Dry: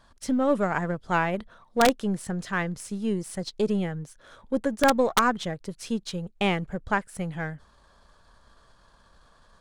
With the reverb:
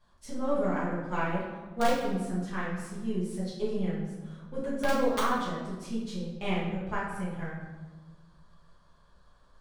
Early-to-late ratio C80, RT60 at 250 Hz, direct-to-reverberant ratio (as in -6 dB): 4.0 dB, 1.8 s, -9.5 dB